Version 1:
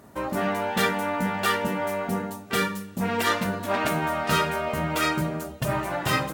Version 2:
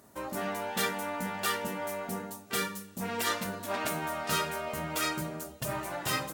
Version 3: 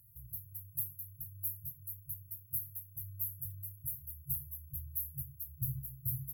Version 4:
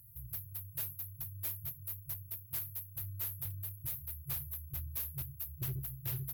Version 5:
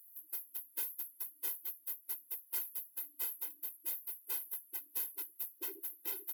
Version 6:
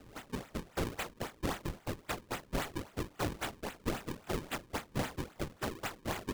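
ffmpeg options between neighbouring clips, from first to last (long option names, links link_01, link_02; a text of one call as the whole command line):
ffmpeg -i in.wav -af "bass=frequency=250:gain=-3,treble=frequency=4000:gain=8,volume=-8dB" out.wav
ffmpeg -i in.wav -af "afftfilt=real='re*(1-between(b*sr/4096,150,11000))':imag='im*(1-between(b*sr/4096,150,11000))':win_size=4096:overlap=0.75,volume=4dB" out.wav
ffmpeg -i in.wav -af "asoftclip=type=tanh:threshold=-38dB,volume=4.5dB" out.wav
ffmpeg -i in.wav -af "afftfilt=real='re*eq(mod(floor(b*sr/1024/270),2),1)':imag='im*eq(mod(floor(b*sr/1024/270),2),1)':win_size=1024:overlap=0.75,volume=4dB" out.wav
ffmpeg -i in.wav -af "acrusher=samples=37:mix=1:aa=0.000001:lfo=1:lforange=59.2:lforate=3.7,volume=3.5dB" out.wav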